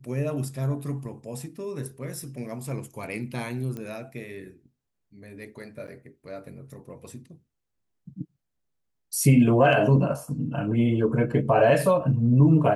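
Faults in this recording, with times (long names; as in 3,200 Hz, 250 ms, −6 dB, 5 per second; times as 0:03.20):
0:03.77: click −23 dBFS
0:05.87–0:05.88: drop-out 8.7 ms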